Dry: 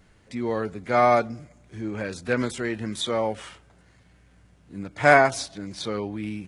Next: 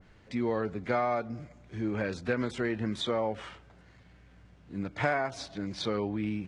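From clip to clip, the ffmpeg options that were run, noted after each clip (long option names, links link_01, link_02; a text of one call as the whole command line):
ffmpeg -i in.wav -af "lowpass=5000,acompressor=threshold=-25dB:ratio=8,adynamicequalizer=threshold=0.00501:dfrequency=2000:dqfactor=0.7:tfrequency=2000:tqfactor=0.7:attack=5:release=100:ratio=0.375:range=2.5:mode=cutabove:tftype=highshelf" out.wav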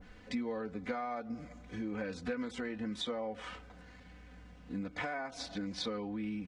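ffmpeg -i in.wav -af "acompressor=threshold=-40dB:ratio=4,aecho=1:1:4:0.73,volume=1.5dB" out.wav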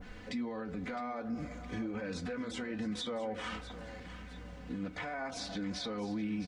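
ffmpeg -i in.wav -af "alimiter=level_in=12.5dB:limit=-24dB:level=0:latency=1:release=52,volume=-12.5dB,flanger=delay=8.3:depth=4.7:regen=-67:speed=0.33:shape=triangular,aecho=1:1:661|1322|1983|2644:0.211|0.0888|0.0373|0.0157,volume=10.5dB" out.wav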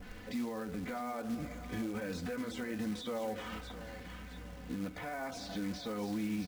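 ffmpeg -i in.wav -filter_complex "[0:a]acrossover=split=850[link_01][link_02];[link_02]alimiter=level_in=14.5dB:limit=-24dB:level=0:latency=1:release=22,volume=-14.5dB[link_03];[link_01][link_03]amix=inputs=2:normalize=0,acrusher=bits=4:mode=log:mix=0:aa=0.000001" out.wav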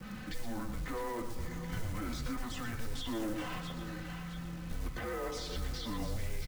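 ffmpeg -i in.wav -filter_complex "[0:a]aecho=1:1:118:0.376,acrossover=split=4700[link_01][link_02];[link_01]asoftclip=type=tanh:threshold=-34.5dB[link_03];[link_03][link_02]amix=inputs=2:normalize=0,afreqshift=-230,volume=4dB" out.wav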